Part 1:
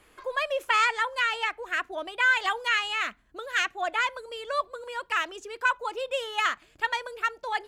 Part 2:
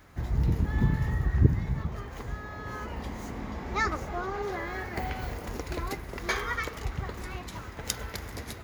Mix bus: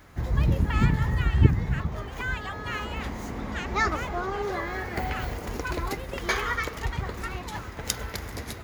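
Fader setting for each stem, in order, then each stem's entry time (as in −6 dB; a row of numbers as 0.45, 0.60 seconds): −11.0, +3.0 decibels; 0.00, 0.00 seconds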